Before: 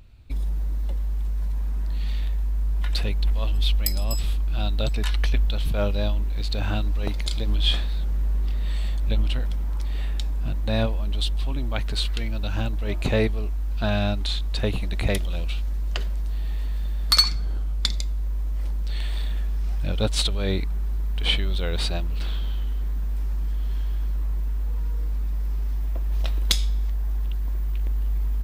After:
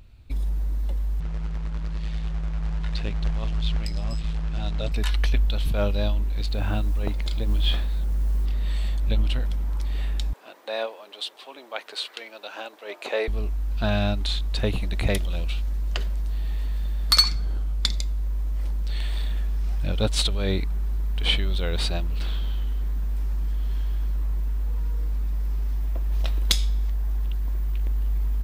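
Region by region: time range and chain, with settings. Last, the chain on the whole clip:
1.20–4.92 s: AM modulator 110 Hz, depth 55% + short-mantissa float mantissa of 2-bit + distance through air 120 m
6.46–8.46 s: peaking EQ 12 kHz -14 dB 2 oct + modulation noise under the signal 33 dB
10.33–13.28 s: high-pass 430 Hz 24 dB/octave + treble shelf 4.6 kHz -6.5 dB
whole clip: none

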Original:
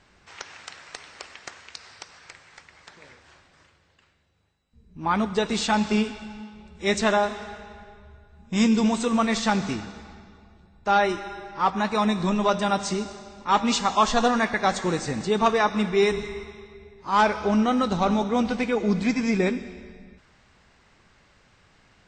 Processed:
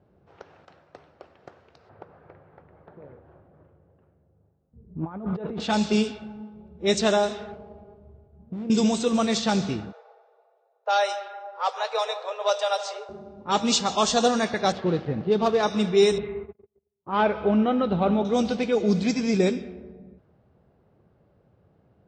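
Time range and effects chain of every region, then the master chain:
0.65–1.39 s: band-stop 440 Hz, Q 8.3 + three bands expanded up and down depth 70%
1.89–5.60 s: low-pass 1.8 kHz + compressor with a negative ratio -32 dBFS
7.52–8.70 s: compression 5:1, threshold -30 dBFS + sliding maximum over 17 samples
9.92–13.09 s: steep high-pass 450 Hz 96 dB/octave + echo whose repeats swap between lows and highs 153 ms, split 1.4 kHz, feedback 56%, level -11 dB
14.72–15.63 s: dead-time distortion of 0.088 ms + distance through air 250 m
16.18–18.25 s: low-pass 2.8 kHz 24 dB/octave + gate -41 dBFS, range -37 dB
whole clip: high-pass 110 Hz 12 dB/octave; level-controlled noise filter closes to 780 Hz, open at -16.5 dBFS; graphic EQ 250/1000/2000 Hz -7/-10/-11 dB; trim +6.5 dB

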